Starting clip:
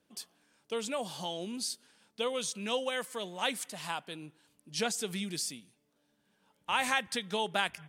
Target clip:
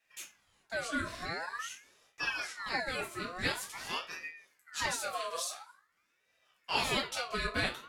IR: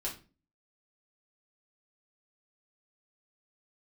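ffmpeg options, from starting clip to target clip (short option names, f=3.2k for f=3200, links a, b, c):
-filter_complex "[0:a]asettb=1/sr,asplit=3[a][b][c];[a]atrim=end=1.014[d];[b]atrim=start=1.01:end=2.76,asetpts=PTS-STARTPTS,afade=t=in:d=0.004:c=qsin,afade=t=out:st=1.746:d=0.004:c=qsin,acrossover=split=4200[e][f];[f]acompressor=threshold=-49dB:ratio=4:attack=1:release=60[g];[e][g]amix=inputs=2:normalize=0[h];[c]atrim=start=2.756[i];[d][h]acrossfade=d=0.004:c1=hsin:c2=qsin[j];[j][i]acrossfade=d=0.004:c1=qsin:c2=hsin[k];[1:a]atrim=start_sample=2205[l];[k][l]afir=irnorm=-1:irlink=0,aeval=exprs='val(0)*sin(2*PI*1500*n/s+1500*0.45/0.47*sin(2*PI*0.47*n/s))':c=same"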